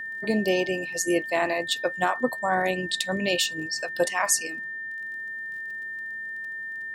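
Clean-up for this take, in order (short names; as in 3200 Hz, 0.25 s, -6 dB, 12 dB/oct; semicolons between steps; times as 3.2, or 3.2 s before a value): de-click; notch 1800 Hz, Q 30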